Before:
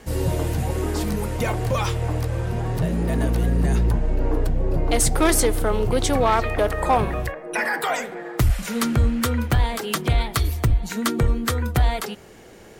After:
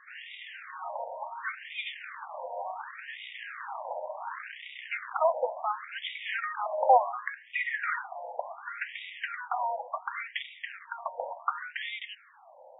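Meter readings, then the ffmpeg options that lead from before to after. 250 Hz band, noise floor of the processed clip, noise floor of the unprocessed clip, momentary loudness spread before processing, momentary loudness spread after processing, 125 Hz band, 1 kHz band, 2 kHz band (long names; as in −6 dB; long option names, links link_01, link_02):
below −40 dB, −54 dBFS, −45 dBFS, 6 LU, 13 LU, below −40 dB, −4.0 dB, −5.0 dB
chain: -af "acrusher=bits=3:mode=log:mix=0:aa=0.000001,aemphasis=mode=reproduction:type=bsi,afftfilt=real='re*between(b*sr/1024,690*pow(2700/690,0.5+0.5*sin(2*PI*0.69*pts/sr))/1.41,690*pow(2700/690,0.5+0.5*sin(2*PI*0.69*pts/sr))*1.41)':imag='im*between(b*sr/1024,690*pow(2700/690,0.5+0.5*sin(2*PI*0.69*pts/sr))/1.41,690*pow(2700/690,0.5+0.5*sin(2*PI*0.69*pts/sr))*1.41)':win_size=1024:overlap=0.75"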